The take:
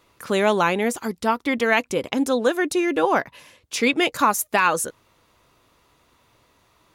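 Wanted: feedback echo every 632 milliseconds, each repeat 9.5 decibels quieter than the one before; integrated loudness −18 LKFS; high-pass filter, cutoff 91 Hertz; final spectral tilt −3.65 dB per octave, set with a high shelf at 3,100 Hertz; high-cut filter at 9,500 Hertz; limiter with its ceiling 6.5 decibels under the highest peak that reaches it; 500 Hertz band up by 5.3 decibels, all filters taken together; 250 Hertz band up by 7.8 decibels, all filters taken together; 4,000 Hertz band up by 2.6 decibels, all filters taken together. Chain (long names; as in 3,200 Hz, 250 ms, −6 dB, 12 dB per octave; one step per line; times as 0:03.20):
high-pass filter 91 Hz
low-pass filter 9,500 Hz
parametric band 250 Hz +8.5 dB
parametric band 500 Hz +4 dB
high-shelf EQ 3,100 Hz −3.5 dB
parametric band 4,000 Hz +6 dB
brickwall limiter −8.5 dBFS
repeating echo 632 ms, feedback 33%, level −9.5 dB
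level +1 dB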